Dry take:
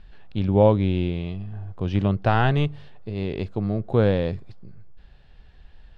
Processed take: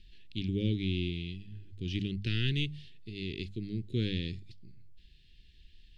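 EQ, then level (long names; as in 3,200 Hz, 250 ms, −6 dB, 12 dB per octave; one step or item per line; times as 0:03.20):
Chebyshev band-stop filter 360–1,900 Hz, order 3
high shelf with overshoot 2,300 Hz +9 dB, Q 1.5
mains-hum notches 50/100/150/200 Hz
−8.5 dB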